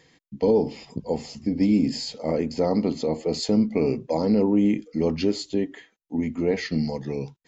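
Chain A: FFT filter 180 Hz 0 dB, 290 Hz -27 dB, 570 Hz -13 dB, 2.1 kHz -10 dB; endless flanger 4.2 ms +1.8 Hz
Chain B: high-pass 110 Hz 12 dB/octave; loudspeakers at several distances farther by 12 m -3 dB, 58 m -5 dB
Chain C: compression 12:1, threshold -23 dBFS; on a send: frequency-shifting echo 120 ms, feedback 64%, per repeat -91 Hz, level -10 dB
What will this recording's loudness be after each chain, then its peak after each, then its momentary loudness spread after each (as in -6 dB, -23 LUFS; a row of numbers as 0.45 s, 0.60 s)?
-37.5 LUFS, -22.5 LUFS, -29.5 LUFS; -22.5 dBFS, -7.0 dBFS, -12.5 dBFS; 9 LU, 9 LU, 5 LU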